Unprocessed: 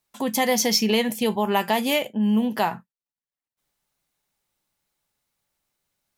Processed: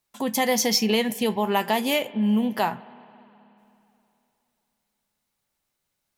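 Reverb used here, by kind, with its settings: spring tank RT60 3 s, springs 53/58 ms, chirp 50 ms, DRR 19 dB; gain -1 dB

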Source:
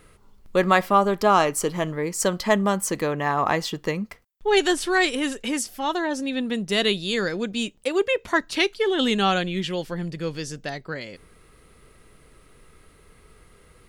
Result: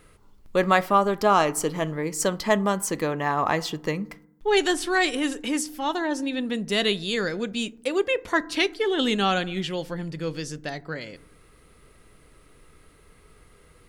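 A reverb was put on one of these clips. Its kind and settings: FDN reverb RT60 0.72 s, low-frequency decay 1.4×, high-frequency decay 0.3×, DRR 16.5 dB; gain -1.5 dB

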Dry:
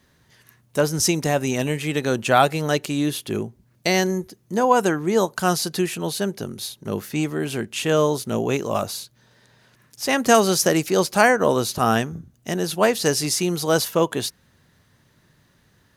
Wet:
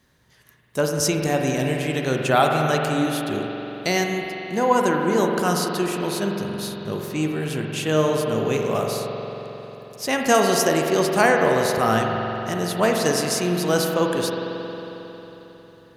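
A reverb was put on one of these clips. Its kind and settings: spring tank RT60 3.9 s, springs 45 ms, chirp 45 ms, DRR 1 dB; gain -2.5 dB

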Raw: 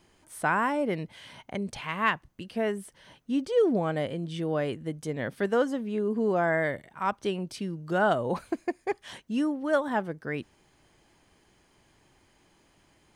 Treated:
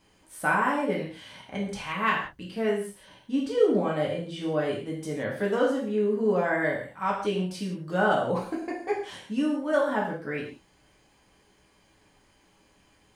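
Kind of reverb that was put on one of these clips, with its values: non-linear reverb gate 0.2 s falling, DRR -3.5 dB; gain -3.5 dB

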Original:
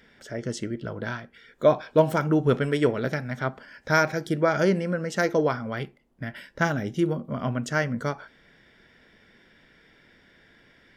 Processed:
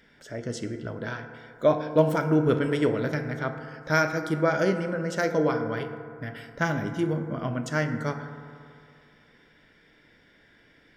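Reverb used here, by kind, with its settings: FDN reverb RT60 2.4 s, low-frequency decay 0.85×, high-frequency decay 0.3×, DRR 6.5 dB; gain -2.5 dB

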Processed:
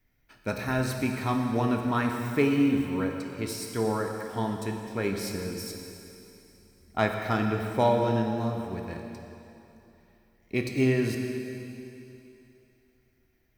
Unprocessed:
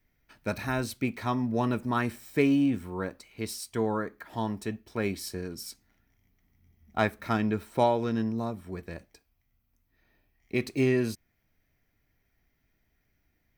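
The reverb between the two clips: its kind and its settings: plate-style reverb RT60 3 s, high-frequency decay 1×, DRR 2.5 dB

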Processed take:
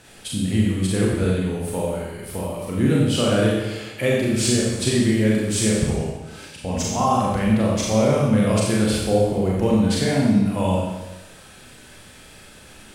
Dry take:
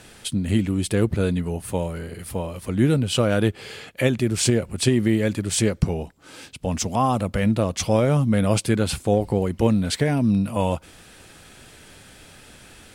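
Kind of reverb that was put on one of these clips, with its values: Schroeder reverb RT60 1.1 s, combs from 29 ms, DRR -4.5 dB; gain -4 dB

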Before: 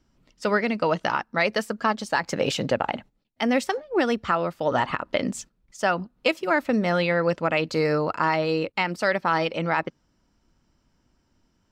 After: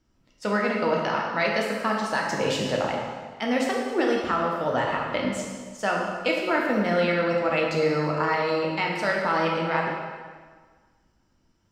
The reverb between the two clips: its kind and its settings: plate-style reverb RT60 1.6 s, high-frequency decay 0.85×, DRR -2 dB; gain -4.5 dB

